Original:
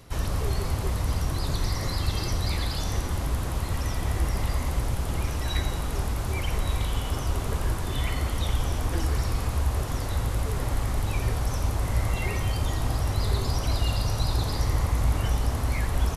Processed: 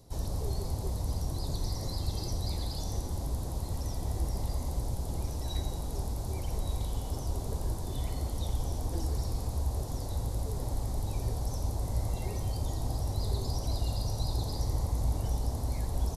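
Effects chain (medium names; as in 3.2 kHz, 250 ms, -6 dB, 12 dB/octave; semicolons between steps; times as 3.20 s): high-order bell 1.9 kHz -13.5 dB; trim -6 dB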